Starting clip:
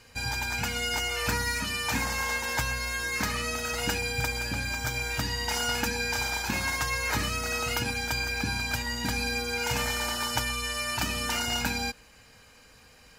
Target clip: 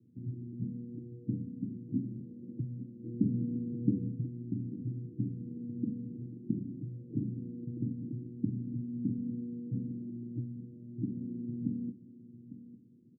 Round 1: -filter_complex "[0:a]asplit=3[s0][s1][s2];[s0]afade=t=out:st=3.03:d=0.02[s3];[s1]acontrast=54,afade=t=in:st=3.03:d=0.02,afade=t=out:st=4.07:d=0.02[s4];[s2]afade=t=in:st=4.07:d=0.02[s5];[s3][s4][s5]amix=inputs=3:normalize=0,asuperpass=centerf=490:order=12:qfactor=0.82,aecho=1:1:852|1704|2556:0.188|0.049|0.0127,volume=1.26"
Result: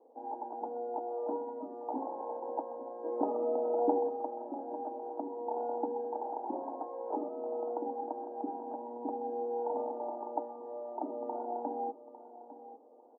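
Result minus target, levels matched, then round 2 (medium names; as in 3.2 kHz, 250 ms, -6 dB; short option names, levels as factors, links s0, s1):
500 Hz band +17.5 dB
-filter_complex "[0:a]asplit=3[s0][s1][s2];[s0]afade=t=out:st=3.03:d=0.02[s3];[s1]acontrast=54,afade=t=in:st=3.03:d=0.02,afade=t=out:st=4.07:d=0.02[s4];[s2]afade=t=in:st=4.07:d=0.02[s5];[s3][s4][s5]amix=inputs=3:normalize=0,asuperpass=centerf=200:order=12:qfactor=0.82,aecho=1:1:852|1704|2556:0.188|0.049|0.0127,volume=1.26"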